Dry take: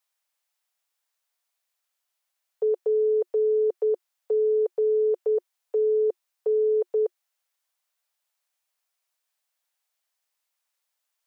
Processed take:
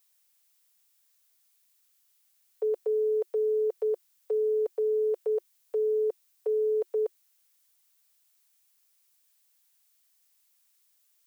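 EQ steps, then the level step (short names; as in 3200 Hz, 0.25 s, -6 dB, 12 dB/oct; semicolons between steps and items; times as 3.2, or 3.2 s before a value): tilt +3.5 dB/oct; 0.0 dB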